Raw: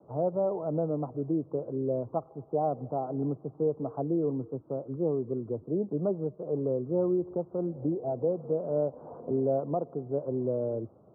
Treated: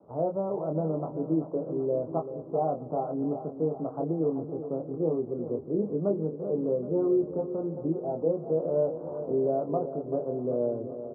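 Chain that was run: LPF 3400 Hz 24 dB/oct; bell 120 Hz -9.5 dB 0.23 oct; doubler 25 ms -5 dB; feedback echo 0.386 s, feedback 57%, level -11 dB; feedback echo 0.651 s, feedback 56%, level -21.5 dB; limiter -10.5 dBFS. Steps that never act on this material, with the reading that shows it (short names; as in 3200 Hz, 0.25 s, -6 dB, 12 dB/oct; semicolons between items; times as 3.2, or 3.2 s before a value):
LPF 3400 Hz: input band ends at 910 Hz; limiter -10.5 dBFS: input peak -14.5 dBFS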